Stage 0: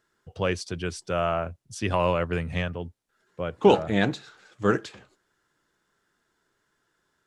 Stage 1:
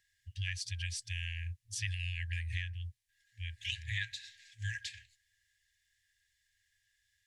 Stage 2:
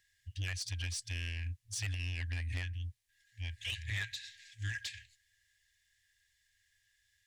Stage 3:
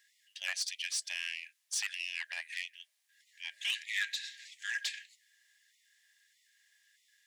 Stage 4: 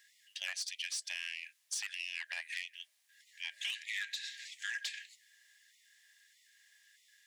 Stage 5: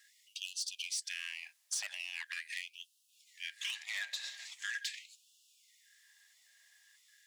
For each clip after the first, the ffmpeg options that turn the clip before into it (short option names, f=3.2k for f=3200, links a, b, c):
-af "afftfilt=real='re*(1-between(b*sr/4096,110,1600))':imag='im*(1-between(b*sr/4096,110,1600))':win_size=4096:overlap=0.75,acompressor=threshold=-33dB:ratio=10"
-af "asoftclip=type=tanh:threshold=-33.5dB,volume=2.5dB"
-af "bandreject=f=71.47:t=h:w=4,bandreject=f=142.94:t=h:w=4,bandreject=f=214.41:t=h:w=4,bandreject=f=285.88:t=h:w=4,bandreject=f=357.35:t=h:w=4,bandreject=f=428.82:t=h:w=4,bandreject=f=500.29:t=h:w=4,bandreject=f=571.76:t=h:w=4,bandreject=f=643.23:t=h:w=4,afftfilt=real='re*gte(b*sr/1024,520*pow(1900/520,0.5+0.5*sin(2*PI*1.6*pts/sr)))':imag='im*gte(b*sr/1024,520*pow(1900/520,0.5+0.5*sin(2*PI*1.6*pts/sr)))':win_size=1024:overlap=0.75,volume=5.5dB"
-af "acompressor=threshold=-40dB:ratio=5,volume=3.5dB"
-filter_complex "[0:a]acrossover=split=1800|3500|7200[a][b][c][d];[b]aeval=exprs='max(val(0),0)':c=same[e];[a][e][c][d]amix=inputs=4:normalize=0,afftfilt=real='re*gte(b*sr/1024,520*pow(2600/520,0.5+0.5*sin(2*PI*0.42*pts/sr)))':imag='im*gte(b*sr/1024,520*pow(2600/520,0.5+0.5*sin(2*PI*0.42*pts/sr)))':win_size=1024:overlap=0.75,volume=2dB"